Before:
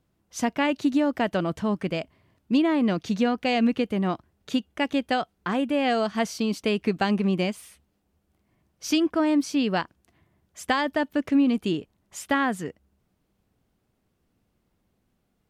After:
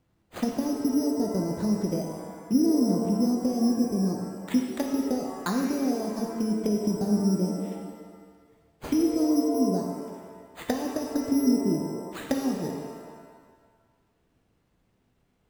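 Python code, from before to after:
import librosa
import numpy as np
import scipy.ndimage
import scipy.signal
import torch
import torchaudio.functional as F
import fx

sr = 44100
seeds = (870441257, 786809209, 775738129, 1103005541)

y = fx.env_lowpass_down(x, sr, base_hz=320.0, full_db=-22.0)
y = np.repeat(y[::8], 8)[:len(y)]
y = fx.rev_shimmer(y, sr, seeds[0], rt60_s=1.5, semitones=7, shimmer_db=-8, drr_db=1.5)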